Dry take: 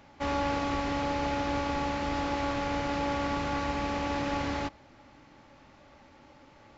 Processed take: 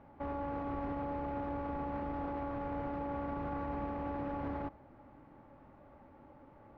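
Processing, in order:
low-pass filter 1,100 Hz 12 dB per octave
brickwall limiter −29.5 dBFS, peak gain reduction 9.5 dB
level −1 dB

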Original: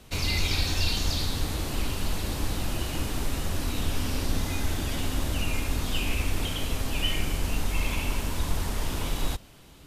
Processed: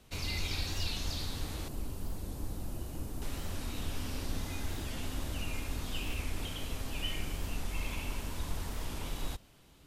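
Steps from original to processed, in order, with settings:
0:01.68–0:03.22: parametric band 2,700 Hz −12.5 dB 2.7 octaves
wow of a warped record 45 rpm, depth 100 cents
level −9 dB

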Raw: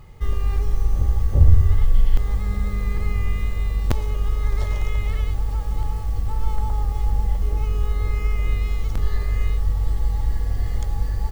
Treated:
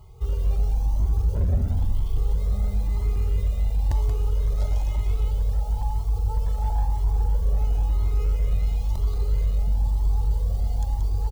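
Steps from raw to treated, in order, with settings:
high-pass filter 43 Hz 12 dB per octave
parametric band 370 Hz +9 dB 0.78 octaves
phaser with its sweep stopped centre 730 Hz, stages 4
gain into a clipping stage and back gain 20.5 dB
notch filter 1,200 Hz, Q 12
on a send: single-tap delay 180 ms −6.5 dB
on the sum: flanger whose copies keep moving one way rising 1 Hz
level +2.5 dB

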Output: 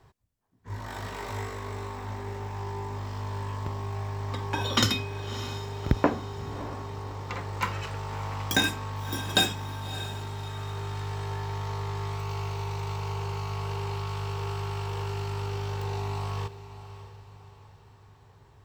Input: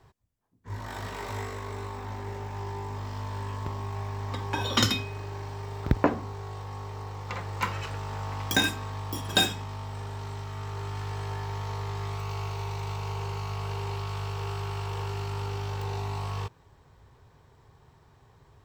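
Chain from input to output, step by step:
feedback delay with all-pass diffusion 613 ms, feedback 43%, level −13.5 dB

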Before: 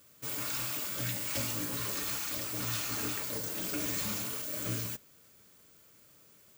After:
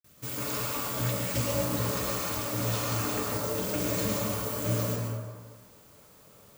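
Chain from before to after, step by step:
noise gate with hold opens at −51 dBFS
low-shelf EQ 280 Hz +10 dB
bit-depth reduction 10 bits, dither none
on a send: flat-topped bell 750 Hz +11 dB + convolution reverb RT60 1.5 s, pre-delay 103 ms, DRR −5 dB

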